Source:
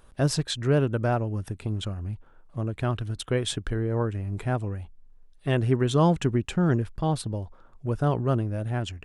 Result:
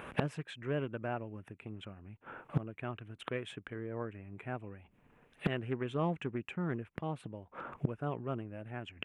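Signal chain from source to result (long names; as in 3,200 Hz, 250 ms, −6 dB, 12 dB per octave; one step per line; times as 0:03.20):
high shelf with overshoot 3,400 Hz −11 dB, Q 3
gate with flip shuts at −29 dBFS, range −26 dB
high-pass filter 150 Hz 12 dB per octave
highs frequency-modulated by the lows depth 0.7 ms
level +14 dB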